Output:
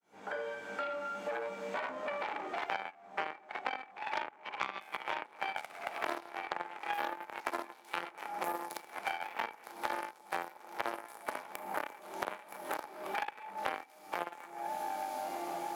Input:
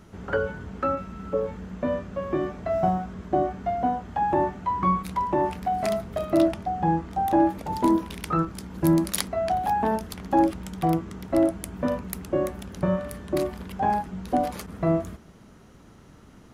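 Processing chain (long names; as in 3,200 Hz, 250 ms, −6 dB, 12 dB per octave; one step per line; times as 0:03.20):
fade in at the beginning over 2.90 s
speed change +5%
feedback delay with all-pass diffusion 1,317 ms, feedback 58%, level −14 dB
dense smooth reverb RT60 1.2 s, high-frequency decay 0.85×, DRR −6 dB
harmonic generator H 3 −9 dB, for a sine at −3.5 dBFS
hollow resonant body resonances 840/2,300 Hz, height 12 dB, ringing for 45 ms
downward compressor 3 to 1, threshold −49 dBFS, peak gain reduction 29.5 dB
harmonic generator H 8 −15 dB, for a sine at −19.5 dBFS
high-pass filter 440 Hz 12 dB per octave
multiband upward and downward compressor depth 100%
level +6.5 dB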